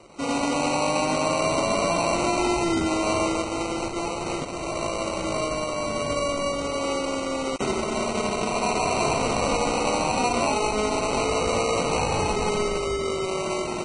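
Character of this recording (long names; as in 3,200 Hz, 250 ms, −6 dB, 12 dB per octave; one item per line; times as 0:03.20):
aliases and images of a low sample rate 1,700 Hz, jitter 0%
Ogg Vorbis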